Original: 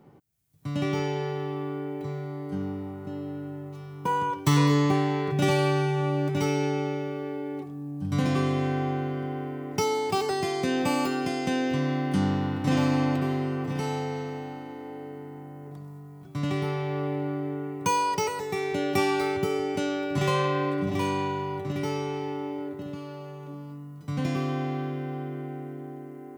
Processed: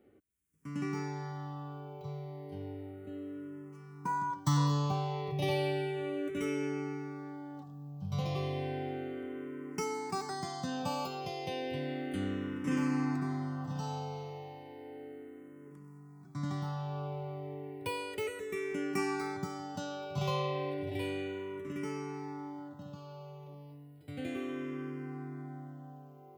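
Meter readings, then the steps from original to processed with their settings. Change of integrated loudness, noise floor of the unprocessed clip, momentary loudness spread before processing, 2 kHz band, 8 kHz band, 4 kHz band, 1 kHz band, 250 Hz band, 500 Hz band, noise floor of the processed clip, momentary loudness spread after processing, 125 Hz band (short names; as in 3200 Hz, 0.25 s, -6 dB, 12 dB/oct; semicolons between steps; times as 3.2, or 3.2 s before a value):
-9.0 dB, -42 dBFS, 15 LU, -9.5 dB, -9.5 dB, -9.0 dB, -9.5 dB, -9.5 dB, -9.5 dB, -53 dBFS, 15 LU, -8.5 dB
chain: endless phaser -0.33 Hz; gain -6 dB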